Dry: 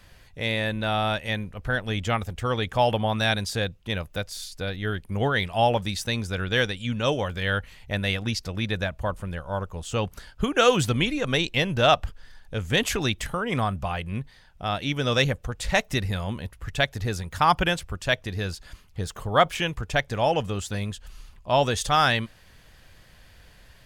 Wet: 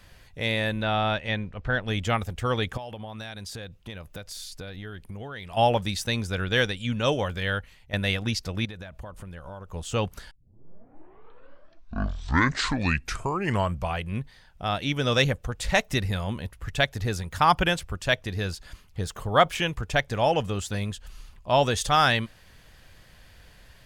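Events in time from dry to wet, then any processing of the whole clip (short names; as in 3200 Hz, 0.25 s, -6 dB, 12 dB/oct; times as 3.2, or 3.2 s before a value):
0.83–1.88 LPF 4600 Hz
2.77–5.57 compressor 8:1, threshold -34 dBFS
7.32–7.93 fade out, to -11 dB
8.65–9.69 compressor 16:1, threshold -35 dBFS
10.31 tape start 3.74 s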